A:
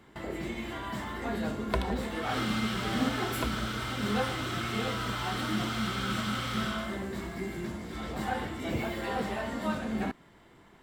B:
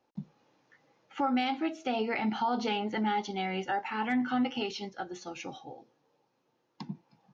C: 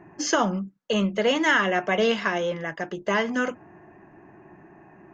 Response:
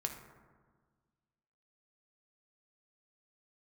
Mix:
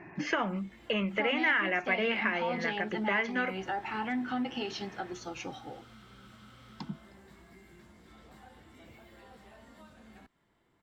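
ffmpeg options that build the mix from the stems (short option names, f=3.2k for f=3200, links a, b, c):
-filter_complex "[0:a]acrossover=split=85|770|3400[a][b][c][d];[a]acompressor=threshold=-46dB:ratio=4[e];[b]acompressor=threshold=-41dB:ratio=4[f];[c]acompressor=threshold=-44dB:ratio=4[g];[d]acompressor=threshold=-53dB:ratio=4[h];[e][f][g][h]amix=inputs=4:normalize=0,adelay=150,volume=-15dB[i];[1:a]volume=0.5dB[j];[2:a]lowpass=f=2.3k:t=q:w=4.4,volume=-1.5dB[k];[i][j][k]amix=inputs=3:normalize=0,acompressor=threshold=-33dB:ratio=2"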